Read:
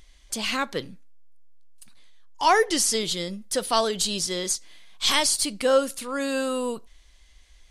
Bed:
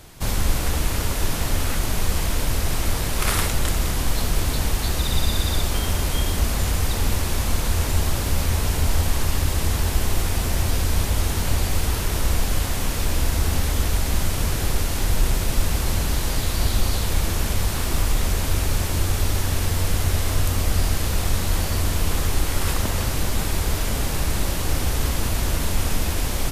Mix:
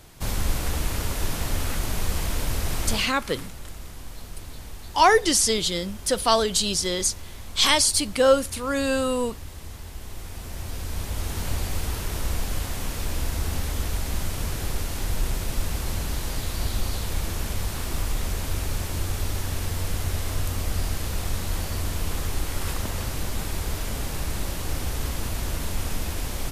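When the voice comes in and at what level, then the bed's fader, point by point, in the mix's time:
2.55 s, +2.5 dB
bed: 2.94 s -4 dB
3.15 s -17.5 dB
9.95 s -17.5 dB
11.42 s -6 dB

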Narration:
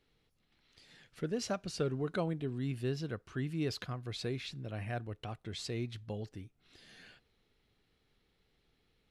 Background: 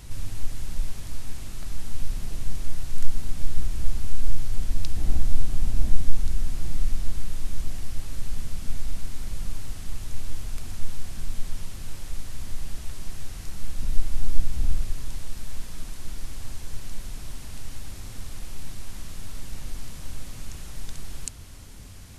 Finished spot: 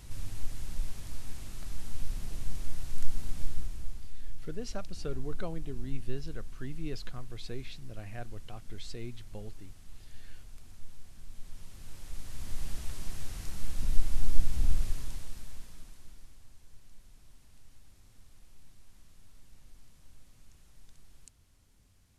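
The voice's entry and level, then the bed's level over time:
3.25 s, -5.0 dB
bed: 3.42 s -6 dB
4.11 s -17 dB
11.23 s -17 dB
12.64 s -3 dB
14.89 s -3 dB
16.47 s -21 dB

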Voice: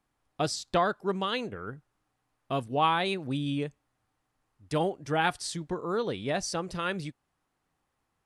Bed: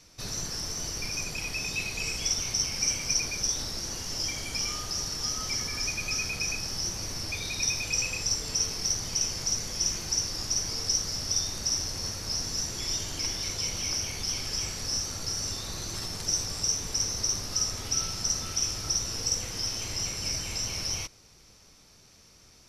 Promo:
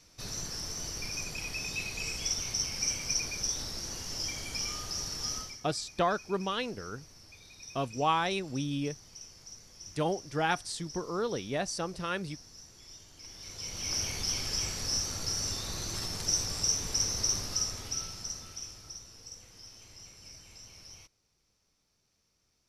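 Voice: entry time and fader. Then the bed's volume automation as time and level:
5.25 s, -2.5 dB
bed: 5.38 s -4 dB
5.61 s -20 dB
13.15 s -20 dB
14.00 s -1 dB
17.38 s -1 dB
19.14 s -19 dB

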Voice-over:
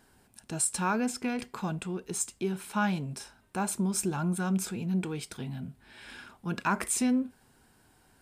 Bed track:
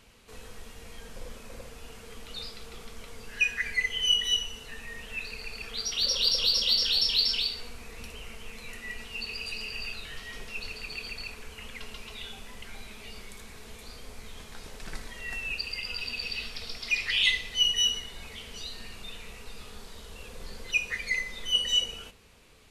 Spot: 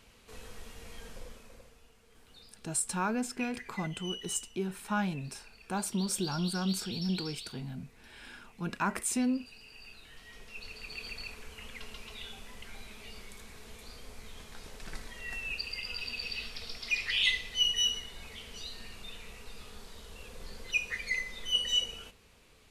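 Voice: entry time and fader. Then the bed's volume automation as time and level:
2.15 s, -3.0 dB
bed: 1.08 s -2 dB
1.94 s -17 dB
9.60 s -17 dB
11.08 s -3.5 dB

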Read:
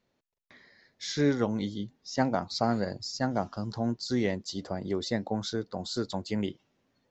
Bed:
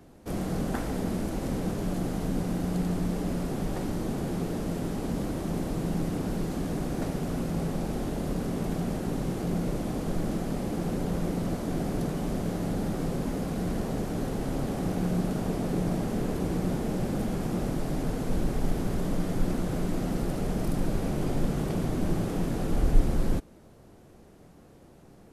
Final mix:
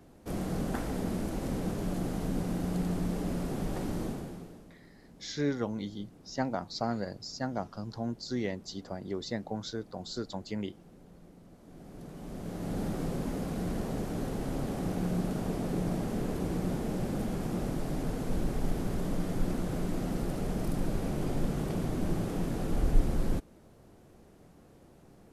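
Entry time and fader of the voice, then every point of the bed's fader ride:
4.20 s, -5.0 dB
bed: 4.04 s -3 dB
4.76 s -25 dB
11.51 s -25 dB
12.79 s -3.5 dB

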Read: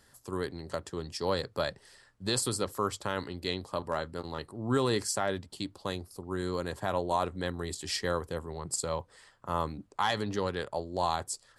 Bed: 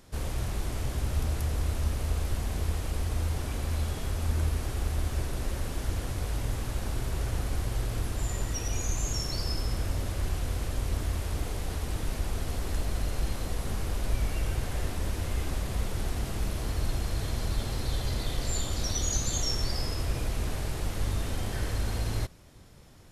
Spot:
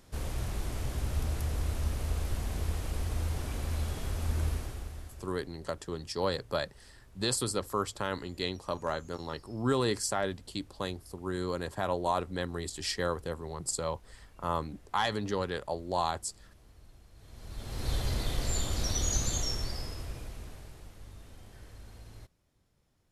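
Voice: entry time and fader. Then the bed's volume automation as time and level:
4.95 s, -0.5 dB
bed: 4.52 s -3 dB
5.51 s -26.5 dB
17.12 s -26.5 dB
17.90 s -1 dB
19.25 s -1 dB
20.99 s -19.5 dB

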